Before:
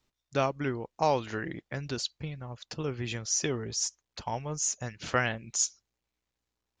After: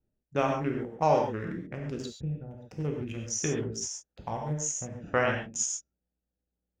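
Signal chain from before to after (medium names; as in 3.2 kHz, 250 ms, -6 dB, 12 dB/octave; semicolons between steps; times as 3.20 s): local Wiener filter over 41 samples; peaking EQ 4.3 kHz -14.5 dB 0.5 oct; gated-style reverb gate 160 ms flat, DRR 0.5 dB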